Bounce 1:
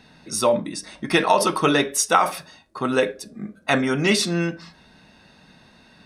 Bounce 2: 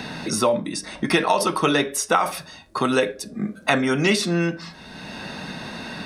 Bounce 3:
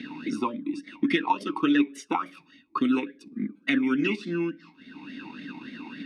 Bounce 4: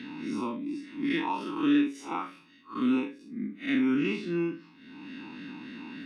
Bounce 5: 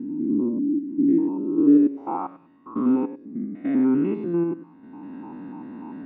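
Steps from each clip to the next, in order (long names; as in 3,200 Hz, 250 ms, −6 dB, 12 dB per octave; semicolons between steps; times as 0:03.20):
multiband upward and downward compressor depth 70%
transient designer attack +3 dB, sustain −7 dB; formant filter swept between two vowels i-u 3.5 Hz; level +5.5 dB
spectrum smeared in time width 114 ms
spectrum averaged block by block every 100 ms; low-pass filter sweep 320 Hz → 790 Hz, 0:01.42–0:02.16; level +5.5 dB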